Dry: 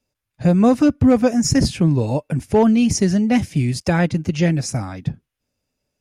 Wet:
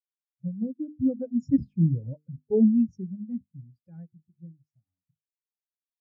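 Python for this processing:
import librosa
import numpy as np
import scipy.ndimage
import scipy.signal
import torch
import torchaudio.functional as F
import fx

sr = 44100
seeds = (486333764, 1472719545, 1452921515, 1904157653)

y = fx.doppler_pass(x, sr, speed_mps=8, closest_m=6.0, pass_at_s=2.02)
y = fx.hum_notches(y, sr, base_hz=50, count=9)
y = fx.rotary_switch(y, sr, hz=6.3, then_hz=1.0, switch_at_s=2.87)
y = fx.spectral_expand(y, sr, expansion=2.5)
y = F.gain(torch.from_numpy(y), -4.0).numpy()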